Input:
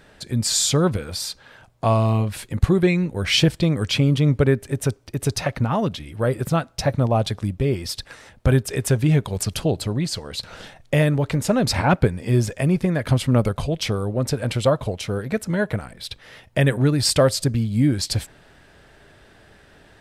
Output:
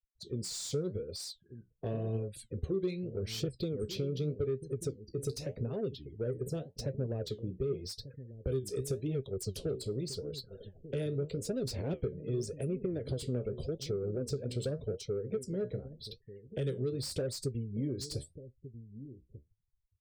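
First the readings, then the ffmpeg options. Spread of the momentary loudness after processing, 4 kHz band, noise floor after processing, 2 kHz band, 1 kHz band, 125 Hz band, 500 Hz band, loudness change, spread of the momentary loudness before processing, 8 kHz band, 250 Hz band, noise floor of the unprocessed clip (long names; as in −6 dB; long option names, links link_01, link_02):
10 LU, −18.0 dB, −73 dBFS, −27.0 dB, −28.5 dB, −16.5 dB, −12.0 dB, −15.5 dB, 9 LU, −17.0 dB, −16.5 dB, −52 dBFS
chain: -filter_complex "[0:a]afftfilt=real='re*gte(hypot(re,im),0.0224)':imag='im*gte(hypot(re,im),0.0224)':win_size=1024:overlap=0.75,firequalizer=gain_entry='entry(290,0);entry(420,14);entry(840,-16);entry(1500,-17);entry(4200,3)':delay=0.05:min_phase=1,flanger=delay=7.4:depth=8.9:regen=58:speed=0.86:shape=sinusoidal,acrossover=split=380|1300|3000|6300[link_01][link_02][link_03][link_04][link_05];[link_01]acompressor=threshold=-25dB:ratio=4[link_06];[link_02]acompressor=threshold=-31dB:ratio=4[link_07];[link_04]acompressor=threshold=-33dB:ratio=4[link_08];[link_05]acompressor=threshold=-32dB:ratio=4[link_09];[link_06][link_07][link_03][link_08][link_09]amix=inputs=5:normalize=0,acrossover=split=420[link_10][link_11];[link_10]aecho=1:1:1192:0.266[link_12];[link_11]asoftclip=type=tanh:threshold=-27.5dB[link_13];[link_12][link_13]amix=inputs=2:normalize=0,volume=-8.5dB"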